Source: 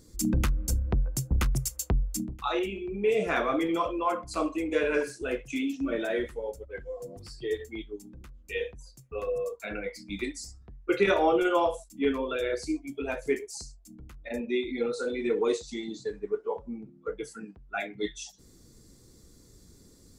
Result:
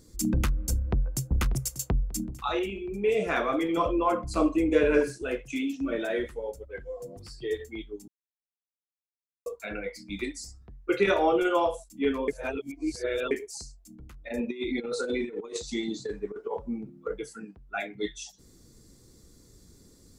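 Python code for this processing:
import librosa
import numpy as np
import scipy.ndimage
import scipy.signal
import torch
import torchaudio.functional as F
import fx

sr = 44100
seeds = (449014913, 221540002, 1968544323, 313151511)

y = fx.echo_throw(x, sr, start_s=0.76, length_s=0.61, ms=590, feedback_pct=40, wet_db=-12.5)
y = fx.low_shelf(y, sr, hz=380.0, db=11.0, at=(3.77, 5.18))
y = fx.over_compress(y, sr, threshold_db=-32.0, ratio=-0.5, at=(14.37, 17.18), fade=0.02)
y = fx.edit(y, sr, fx.silence(start_s=8.08, length_s=1.38),
    fx.reverse_span(start_s=12.28, length_s=1.03), tone=tone)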